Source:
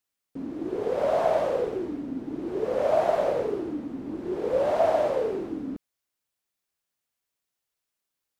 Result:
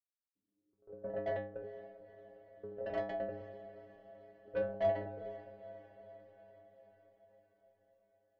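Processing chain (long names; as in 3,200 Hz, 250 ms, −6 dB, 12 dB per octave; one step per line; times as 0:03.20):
adaptive Wiener filter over 25 samples
inverse Chebyshev low-pass filter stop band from 3,000 Hz, stop band 70 dB
noise gate −23 dBFS, range −54 dB
low-shelf EQ 240 Hz +10.5 dB
downward compressor 3 to 1, threshold −25 dBFS, peak gain reduction 4.5 dB
soft clipping −28.5 dBFS, distortion −9 dB
stiff-string resonator 98 Hz, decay 0.78 s, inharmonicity 0.008
feedback delay with all-pass diffusion 474 ms, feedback 61%, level −15 dB
every ending faded ahead of time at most 140 dB per second
level +13.5 dB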